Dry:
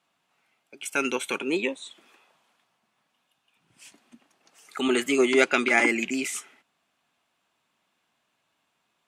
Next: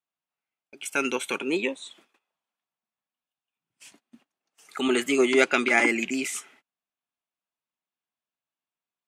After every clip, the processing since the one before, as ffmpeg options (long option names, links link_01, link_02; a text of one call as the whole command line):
ffmpeg -i in.wav -af "agate=range=-22dB:threshold=-55dB:ratio=16:detection=peak" out.wav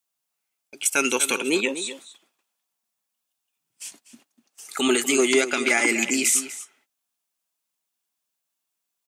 ffmpeg -i in.wav -filter_complex "[0:a]bass=frequency=250:gain=-2,treble=frequency=4000:gain=12,alimiter=limit=-12dB:level=0:latency=1:release=165,asplit=2[link_01][link_02];[link_02]adelay=244.9,volume=-12dB,highshelf=frequency=4000:gain=-5.51[link_03];[link_01][link_03]amix=inputs=2:normalize=0,volume=3.5dB" out.wav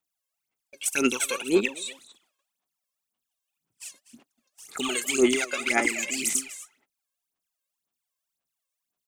ffmpeg -i in.wav -af "aphaser=in_gain=1:out_gain=1:delay=1.9:decay=0.79:speed=1.9:type=sinusoidal,volume=-8.5dB" out.wav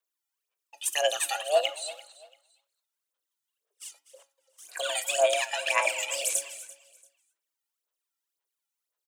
ffmpeg -i in.wav -af "afreqshift=290,aecho=1:1:340|680:0.106|0.0307,flanger=delay=7.1:depth=2.6:regen=87:speed=0.24:shape=triangular,volume=2.5dB" out.wav